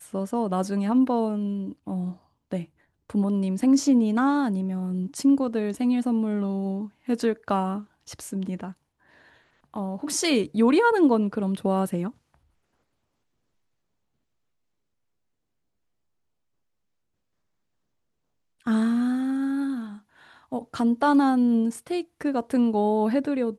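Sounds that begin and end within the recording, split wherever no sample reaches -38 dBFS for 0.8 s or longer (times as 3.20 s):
9.74–12.11 s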